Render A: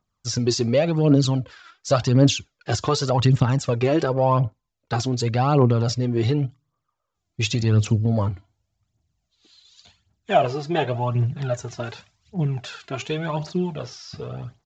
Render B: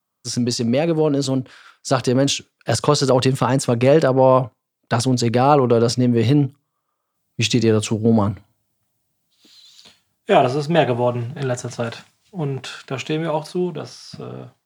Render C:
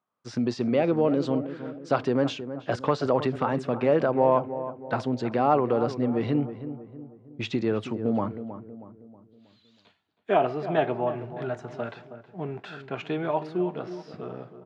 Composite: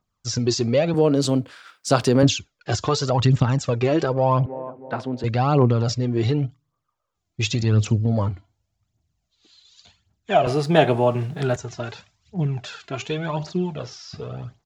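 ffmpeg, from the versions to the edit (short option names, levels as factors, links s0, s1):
-filter_complex "[1:a]asplit=2[s0][s1];[0:a]asplit=4[s2][s3][s4][s5];[s2]atrim=end=0.942[s6];[s0]atrim=start=0.938:end=2.232[s7];[s3]atrim=start=2.228:end=4.462[s8];[2:a]atrim=start=4.458:end=5.242[s9];[s4]atrim=start=5.238:end=10.472[s10];[s1]atrim=start=10.468:end=11.562[s11];[s5]atrim=start=11.558[s12];[s6][s7]acrossfade=d=0.004:c1=hsin:c2=hsin[s13];[s13][s8]acrossfade=d=0.004:c1=hsin:c2=hsin[s14];[s14][s9]acrossfade=d=0.004:c1=hsin:c2=hsin[s15];[s15][s10]acrossfade=d=0.004:c1=hsin:c2=hsin[s16];[s16][s11]acrossfade=d=0.004:c1=hsin:c2=hsin[s17];[s17][s12]acrossfade=d=0.004:c1=hsin:c2=hsin"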